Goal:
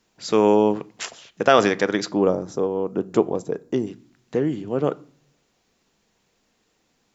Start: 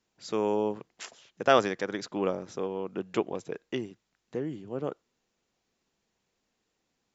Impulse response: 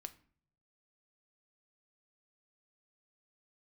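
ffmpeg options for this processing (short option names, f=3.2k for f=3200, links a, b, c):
-filter_complex "[0:a]asettb=1/sr,asplit=3[a][b][c];[a]atrim=end=2.124[d];[b]atrim=start=2.12:end=3.87,asetpts=PTS-STARTPTS,afade=t=in:d=0.004:c=qsin,afade=t=out:st=1.746:d=0.004:c=qsin,equalizer=f=2.5k:w=0.79:g=-14.5[e];[c]atrim=start=3.866[f];[d][e]acrossfade=d=0.004:c1=hsin:c2=qsin[g];[g][f]acrossfade=d=0.004:c1=qsin:c2=hsin,asplit=2[h][i];[1:a]atrim=start_sample=2205[j];[i][j]afir=irnorm=-1:irlink=0,volume=5dB[k];[h][k]amix=inputs=2:normalize=0,alimiter=level_in=6dB:limit=-1dB:release=50:level=0:latency=1,volume=-1dB"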